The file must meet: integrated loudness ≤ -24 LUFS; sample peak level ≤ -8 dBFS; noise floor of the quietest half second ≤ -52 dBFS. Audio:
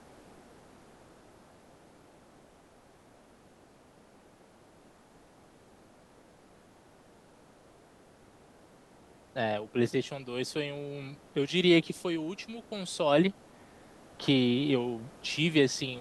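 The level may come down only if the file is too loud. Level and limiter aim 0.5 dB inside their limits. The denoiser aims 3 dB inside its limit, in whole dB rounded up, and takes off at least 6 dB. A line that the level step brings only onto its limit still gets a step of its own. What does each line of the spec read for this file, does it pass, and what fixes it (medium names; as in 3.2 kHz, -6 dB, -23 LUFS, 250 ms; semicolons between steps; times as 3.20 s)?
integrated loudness -30.0 LUFS: pass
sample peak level -11.5 dBFS: pass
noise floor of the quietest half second -59 dBFS: pass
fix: none needed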